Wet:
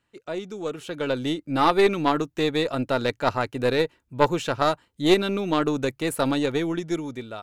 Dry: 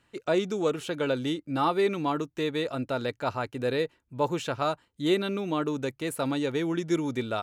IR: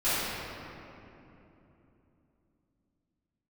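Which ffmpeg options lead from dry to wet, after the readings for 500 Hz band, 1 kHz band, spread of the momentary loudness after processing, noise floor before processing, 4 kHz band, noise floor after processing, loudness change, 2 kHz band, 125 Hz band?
+4.0 dB, +5.5 dB, 10 LU, −72 dBFS, +5.5 dB, −73 dBFS, +4.5 dB, +5.5 dB, +3.5 dB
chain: -af "dynaudnorm=framelen=300:gausssize=7:maxgain=13dB,aeval=exprs='0.794*(cos(1*acos(clip(val(0)/0.794,-1,1)))-cos(1*PI/2))+0.112*(cos(2*acos(clip(val(0)/0.794,-1,1)))-cos(2*PI/2))+0.112*(cos(3*acos(clip(val(0)/0.794,-1,1)))-cos(3*PI/2))':channel_layout=same,volume=-2dB"

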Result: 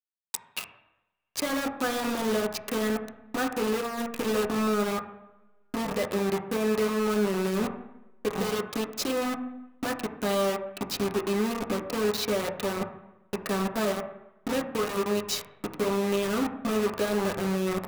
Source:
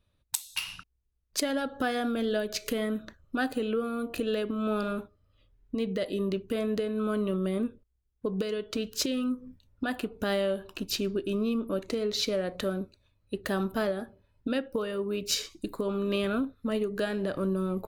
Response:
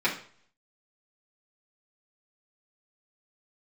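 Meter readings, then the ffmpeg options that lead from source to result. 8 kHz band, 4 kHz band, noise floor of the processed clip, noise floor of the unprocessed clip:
+1.5 dB, 0.0 dB, −64 dBFS, −74 dBFS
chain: -filter_complex "[0:a]bandreject=frequency=46.2:width_type=h:width=4,bandreject=frequency=92.4:width_type=h:width=4,bandreject=frequency=138.6:width_type=h:width=4,bandreject=frequency=184.8:width_type=h:width=4,bandreject=frequency=231:width_type=h:width=4,bandreject=frequency=277.2:width_type=h:width=4,acrusher=bits=4:mix=0:aa=0.000001,asplit=2[link_01][link_02];[1:a]atrim=start_sample=2205,asetrate=22491,aresample=44100,lowpass=2200[link_03];[link_02][link_03]afir=irnorm=-1:irlink=0,volume=-17dB[link_04];[link_01][link_04]amix=inputs=2:normalize=0,volume=-2.5dB"

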